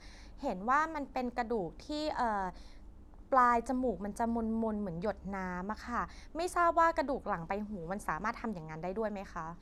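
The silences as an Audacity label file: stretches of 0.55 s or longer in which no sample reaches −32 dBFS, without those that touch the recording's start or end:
2.490000	3.320000	silence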